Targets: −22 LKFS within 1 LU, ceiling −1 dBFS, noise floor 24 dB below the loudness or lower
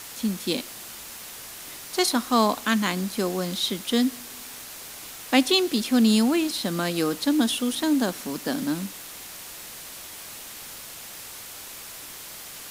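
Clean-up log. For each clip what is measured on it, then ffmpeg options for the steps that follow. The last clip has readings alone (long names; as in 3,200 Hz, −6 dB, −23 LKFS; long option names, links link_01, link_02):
background noise floor −41 dBFS; target noise floor −48 dBFS; integrated loudness −24.0 LKFS; sample peak −4.5 dBFS; target loudness −22.0 LKFS
→ -af "afftdn=noise_reduction=7:noise_floor=-41"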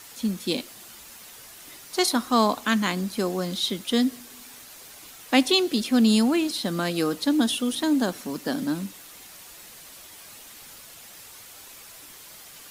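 background noise floor −46 dBFS; target noise floor −48 dBFS
→ -af "afftdn=noise_reduction=6:noise_floor=-46"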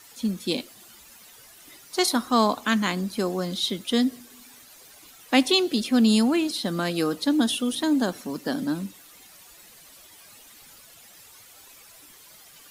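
background noise floor −50 dBFS; integrated loudness −24.0 LKFS; sample peak −4.5 dBFS; target loudness −22.0 LKFS
→ -af "volume=2dB"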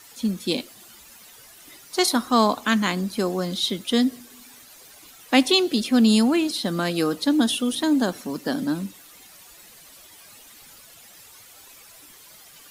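integrated loudness −22.0 LKFS; sample peak −2.5 dBFS; background noise floor −48 dBFS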